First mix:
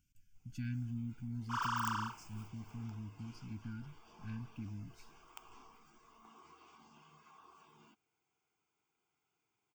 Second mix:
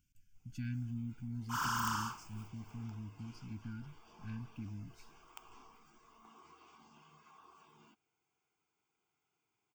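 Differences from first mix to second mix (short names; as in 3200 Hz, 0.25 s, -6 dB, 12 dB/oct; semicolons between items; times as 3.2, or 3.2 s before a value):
second sound: remove BPF 560–4600 Hz; reverb: on, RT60 0.40 s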